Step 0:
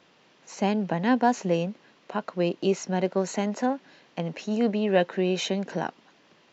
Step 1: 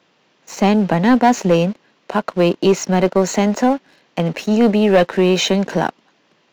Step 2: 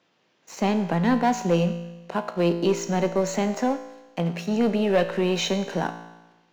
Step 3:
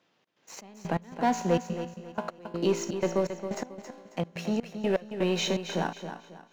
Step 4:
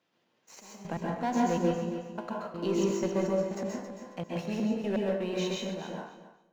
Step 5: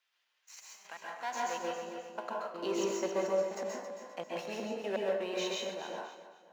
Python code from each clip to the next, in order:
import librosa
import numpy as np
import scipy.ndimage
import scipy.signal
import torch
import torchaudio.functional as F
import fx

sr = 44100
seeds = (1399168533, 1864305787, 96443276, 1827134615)

y1 = scipy.signal.sosfilt(scipy.signal.butter(4, 89.0, 'highpass', fs=sr, output='sos'), x)
y1 = fx.leveller(y1, sr, passes=2)
y1 = y1 * 10.0 ** (4.5 / 20.0)
y2 = fx.comb_fb(y1, sr, f0_hz=57.0, decay_s=1.1, harmonics='all', damping=0.0, mix_pct=70)
y3 = fx.step_gate(y2, sr, bpm=124, pattern='xx.xx..x..x', floor_db=-24.0, edge_ms=4.5)
y3 = fx.echo_feedback(y3, sr, ms=272, feedback_pct=32, wet_db=-9.5)
y3 = y3 * 10.0 ** (-3.5 / 20.0)
y4 = fx.fade_out_tail(y3, sr, length_s=1.58)
y4 = fx.rev_plate(y4, sr, seeds[0], rt60_s=0.56, hf_ratio=0.65, predelay_ms=115, drr_db=-2.5)
y4 = y4 * 10.0 ** (-6.5 / 20.0)
y5 = fx.filter_sweep_highpass(y4, sr, from_hz=1600.0, to_hz=470.0, start_s=0.8, end_s=2.33, q=0.81)
y5 = y5 + 10.0 ** (-19.5 / 20.0) * np.pad(y5, (int(525 * sr / 1000.0), 0))[:len(y5)]